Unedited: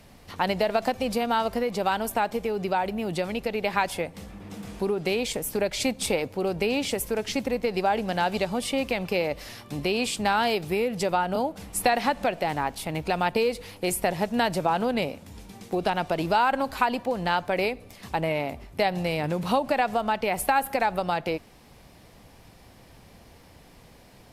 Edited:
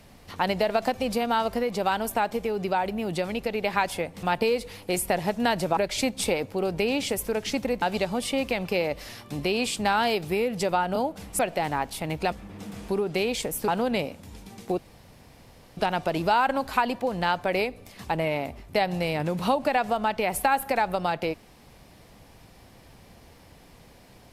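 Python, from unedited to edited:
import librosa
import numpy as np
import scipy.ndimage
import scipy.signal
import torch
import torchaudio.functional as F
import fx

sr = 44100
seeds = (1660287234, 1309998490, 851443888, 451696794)

y = fx.edit(x, sr, fx.swap(start_s=4.23, length_s=1.36, other_s=13.17, other_length_s=1.54),
    fx.cut(start_s=7.64, length_s=0.58),
    fx.cut(start_s=11.79, length_s=0.45),
    fx.insert_room_tone(at_s=15.81, length_s=0.99), tone=tone)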